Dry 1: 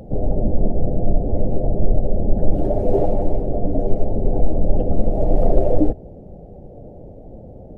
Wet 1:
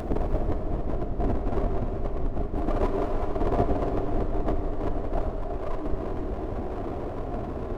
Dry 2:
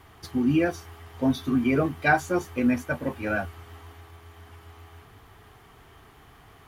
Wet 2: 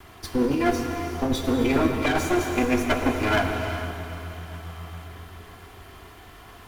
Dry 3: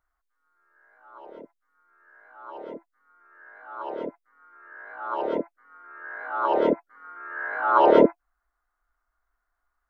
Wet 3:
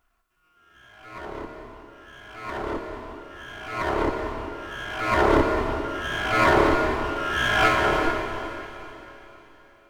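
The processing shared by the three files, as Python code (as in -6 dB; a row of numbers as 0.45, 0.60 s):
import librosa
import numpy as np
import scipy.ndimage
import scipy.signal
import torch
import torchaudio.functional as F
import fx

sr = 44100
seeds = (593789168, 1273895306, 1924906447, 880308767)

y = fx.lower_of_two(x, sr, delay_ms=2.9)
y = fx.over_compress(y, sr, threshold_db=-26.0, ratio=-1.0)
y = fx.echo_diffused(y, sr, ms=458, feedback_pct=40, wet_db=-11.5)
y = fx.rev_gated(y, sr, seeds[0], gate_ms=420, shape='flat', drr_db=4.0)
y = y * 10.0 ** (-26 / 20.0) / np.sqrt(np.mean(np.square(y)))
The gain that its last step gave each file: -1.5, +4.5, +6.0 dB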